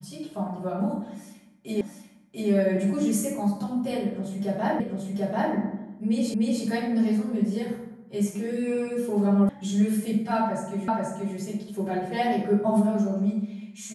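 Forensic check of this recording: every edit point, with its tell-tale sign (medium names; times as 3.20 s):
1.81 s: repeat of the last 0.69 s
4.80 s: repeat of the last 0.74 s
6.34 s: repeat of the last 0.3 s
9.49 s: sound stops dead
10.88 s: repeat of the last 0.48 s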